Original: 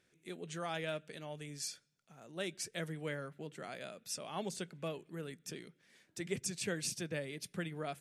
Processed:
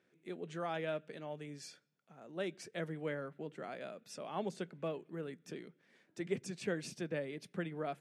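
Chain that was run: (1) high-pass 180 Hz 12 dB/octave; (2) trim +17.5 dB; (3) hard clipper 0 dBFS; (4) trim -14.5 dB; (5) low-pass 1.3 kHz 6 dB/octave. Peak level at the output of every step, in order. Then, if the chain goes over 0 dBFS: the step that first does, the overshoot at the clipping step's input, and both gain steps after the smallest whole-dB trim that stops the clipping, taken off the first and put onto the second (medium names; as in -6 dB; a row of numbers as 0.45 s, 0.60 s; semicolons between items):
-23.0 dBFS, -5.5 dBFS, -5.5 dBFS, -20.0 dBFS, -23.5 dBFS; nothing clips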